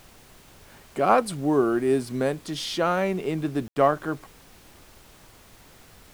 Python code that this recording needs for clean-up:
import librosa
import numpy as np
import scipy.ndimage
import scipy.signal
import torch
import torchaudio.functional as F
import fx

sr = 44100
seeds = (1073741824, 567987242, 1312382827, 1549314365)

y = fx.fix_ambience(x, sr, seeds[0], print_start_s=5.02, print_end_s=5.52, start_s=3.68, end_s=3.76)
y = fx.noise_reduce(y, sr, print_start_s=5.02, print_end_s=5.52, reduce_db=18.0)